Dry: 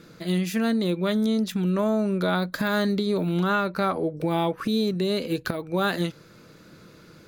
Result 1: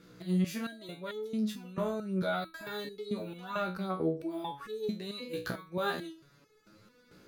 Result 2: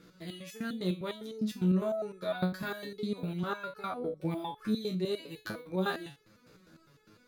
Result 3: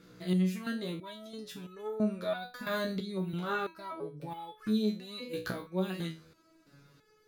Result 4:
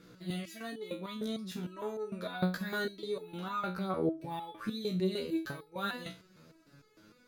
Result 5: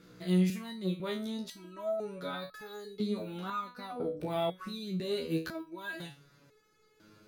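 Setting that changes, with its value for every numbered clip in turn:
stepped resonator, rate: 4.5, 9.9, 3, 6.6, 2 Hz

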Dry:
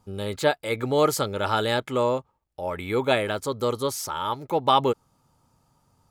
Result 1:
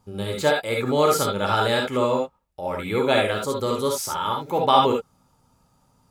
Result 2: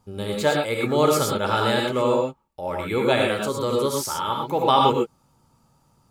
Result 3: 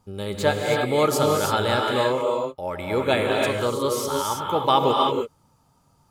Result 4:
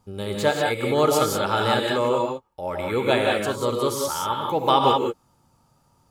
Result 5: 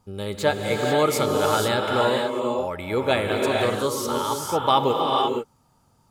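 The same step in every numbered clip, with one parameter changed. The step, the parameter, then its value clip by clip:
non-linear reverb, gate: 90, 140, 350, 210, 520 ms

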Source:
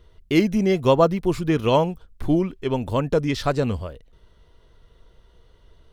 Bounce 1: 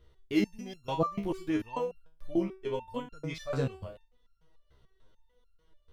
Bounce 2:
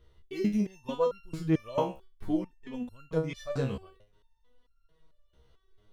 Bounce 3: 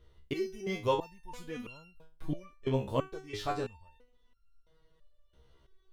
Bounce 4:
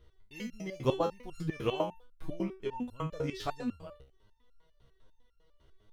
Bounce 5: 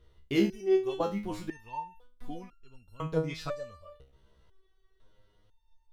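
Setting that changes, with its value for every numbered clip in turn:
stepped resonator, rate: 6.8, 4.5, 3, 10, 2 Hz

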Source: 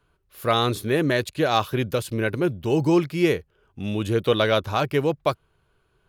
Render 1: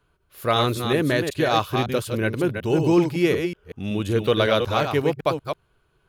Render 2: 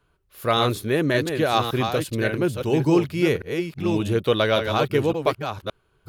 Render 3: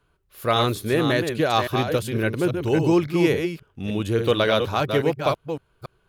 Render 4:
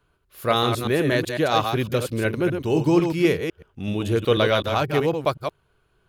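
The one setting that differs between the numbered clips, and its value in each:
reverse delay, time: 0.186, 0.57, 0.279, 0.125 s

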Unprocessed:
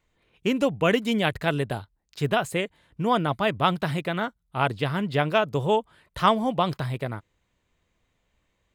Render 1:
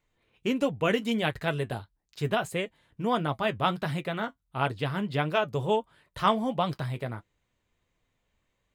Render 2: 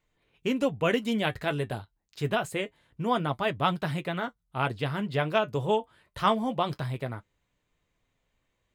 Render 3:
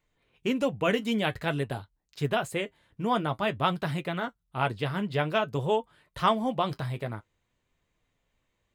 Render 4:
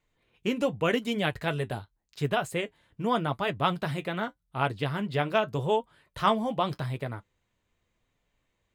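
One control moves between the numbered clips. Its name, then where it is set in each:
flange, rate: 1.5, 0.26, 0.5, 0.85 Hz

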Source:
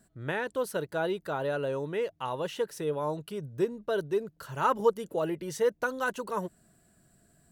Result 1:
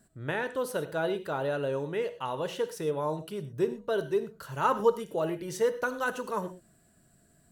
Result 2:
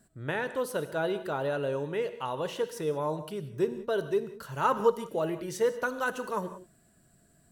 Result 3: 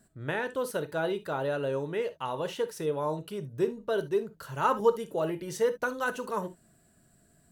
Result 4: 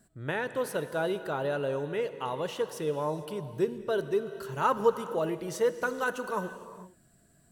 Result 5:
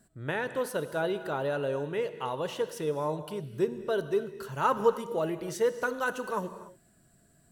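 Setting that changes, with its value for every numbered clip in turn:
non-linear reverb, gate: 140, 210, 90, 490, 320 ms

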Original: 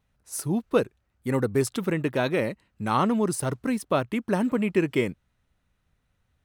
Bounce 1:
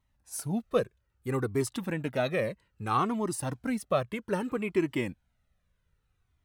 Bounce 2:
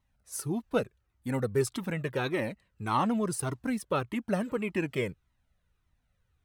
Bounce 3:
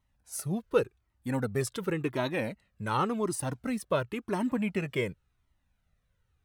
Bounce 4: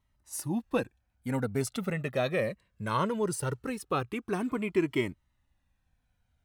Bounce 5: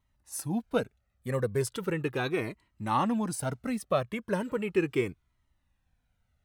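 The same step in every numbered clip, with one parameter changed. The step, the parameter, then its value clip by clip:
cascading flanger, rate: 0.62, 1.7, 0.91, 0.2, 0.37 Hz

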